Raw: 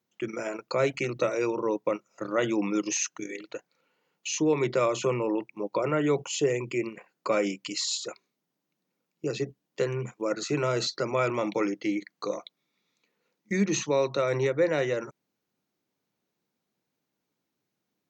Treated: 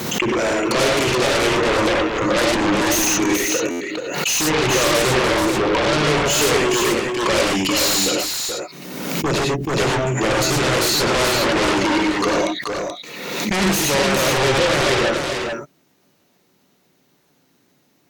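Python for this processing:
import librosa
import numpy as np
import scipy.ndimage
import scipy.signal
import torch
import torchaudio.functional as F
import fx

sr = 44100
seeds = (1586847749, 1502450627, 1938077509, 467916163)

p1 = fx.rev_gated(x, sr, seeds[0], gate_ms=130, shape='rising', drr_db=0.0)
p2 = fx.fold_sine(p1, sr, drive_db=19, ceiling_db=-11.0)
p3 = p1 + F.gain(torch.from_numpy(p2), -9.0).numpy()
p4 = p3 + 10.0 ** (-5.0 / 20.0) * np.pad(p3, (int(431 * sr / 1000.0), 0))[:len(p3)]
p5 = fx.buffer_glitch(p4, sr, at_s=(3.7,), block=512, repeats=8)
p6 = fx.pre_swell(p5, sr, db_per_s=38.0)
y = F.gain(torch.from_numpy(p6), 1.5).numpy()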